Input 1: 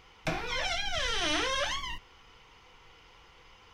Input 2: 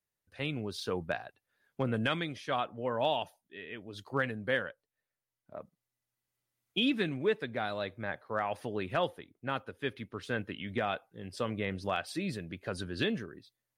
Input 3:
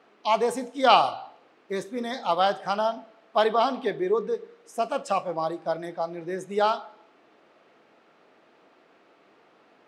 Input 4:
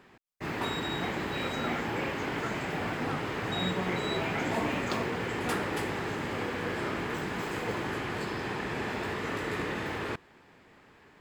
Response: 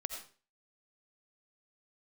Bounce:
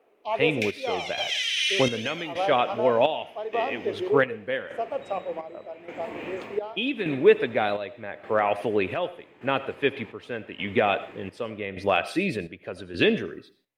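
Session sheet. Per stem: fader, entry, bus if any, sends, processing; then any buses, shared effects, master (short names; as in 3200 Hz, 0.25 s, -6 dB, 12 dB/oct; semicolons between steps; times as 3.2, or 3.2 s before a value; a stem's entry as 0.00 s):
-7.0 dB, 0.35 s, send -6 dB, steep high-pass 1900 Hz 36 dB/oct; tilt +3.5 dB/oct
+1.5 dB, 0.00 s, send -7 dB, dry
-17.0 dB, 0.00 s, no send, bell 510 Hz +8.5 dB 1.7 oct
-12.5 dB, 1.50 s, send -13.5 dB, auto duck -12 dB, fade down 0.45 s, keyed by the second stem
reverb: on, RT60 0.40 s, pre-delay 45 ms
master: EQ curve 150 Hz 0 dB, 240 Hz +4 dB, 450 Hz +9 dB, 1500 Hz +2 dB, 2500 Hz +10 dB, 4600 Hz -2 dB; chopper 0.85 Hz, depth 65%, duty 60%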